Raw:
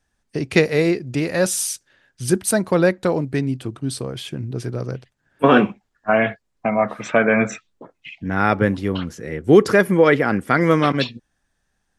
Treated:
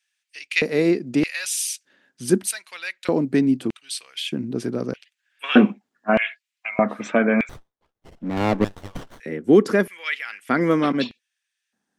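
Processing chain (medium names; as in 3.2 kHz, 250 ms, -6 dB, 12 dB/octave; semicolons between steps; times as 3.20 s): gain riding within 3 dB 0.5 s; LFO high-pass square 0.81 Hz 230–2500 Hz; 7.49–9.20 s: sliding maximum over 17 samples; trim -3.5 dB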